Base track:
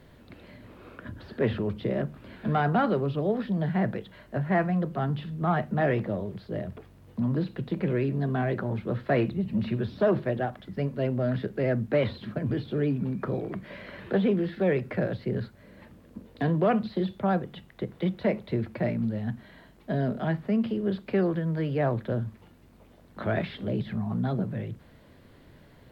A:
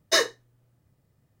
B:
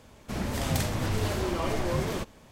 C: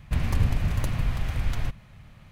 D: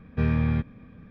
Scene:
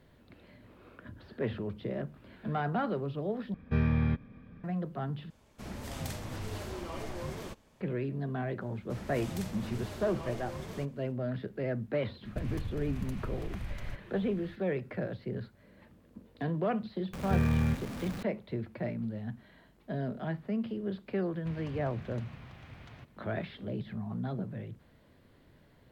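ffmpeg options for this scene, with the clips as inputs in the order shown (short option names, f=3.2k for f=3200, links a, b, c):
-filter_complex "[4:a]asplit=2[a][b];[2:a]asplit=2[c][d];[3:a]asplit=2[e][f];[0:a]volume=-7.5dB[g];[e]acompressor=threshold=-29dB:ratio=4:attack=0.14:release=701:knee=1:detection=peak[h];[b]aeval=exprs='val(0)+0.5*0.0299*sgn(val(0))':c=same[i];[f]highpass=120,lowpass=4.4k[j];[g]asplit=3[k][l][m];[k]atrim=end=3.544[n];[a]atrim=end=1.1,asetpts=PTS-STARTPTS,volume=-4dB[o];[l]atrim=start=4.636:end=5.304[p];[c]atrim=end=2.51,asetpts=PTS-STARTPTS,volume=-10.5dB[q];[m]atrim=start=7.806[r];[d]atrim=end=2.51,asetpts=PTS-STARTPTS,volume=-13dB,afade=t=in:d=0.004:c=hsin,afade=t=out:st=2.506:d=0.004:c=hsin,adelay=8610[s];[h]atrim=end=2.31,asetpts=PTS-STARTPTS,volume=-3.5dB,afade=t=in:d=0.004:c=hsin,afade=t=out:st=2.306:d=0.004:c=hsin,adelay=12250[t];[i]atrim=end=1.1,asetpts=PTS-STARTPTS,volume=-5dB,afade=t=in:d=0.004:c=hsin,afade=t=out:st=1.096:d=0.004:c=hsin,adelay=17130[u];[j]atrim=end=2.31,asetpts=PTS-STARTPTS,volume=-15dB,afade=t=in:d=0.004:c=hsin,afade=t=out:st=2.306:d=0.004:c=hsin,adelay=21340[v];[n][o]acrossfade=d=0.004:c1=hsin:c2=hsin[w];[w][p]acrossfade=d=0.004:c1=hsin:c2=hsin[x];[x][q]acrossfade=d=0.004:c1=hsin:c2=hsin[y];[y][r]acrossfade=d=0.004:c1=hsin:c2=hsin[z];[z][s][t][u][v]amix=inputs=5:normalize=0"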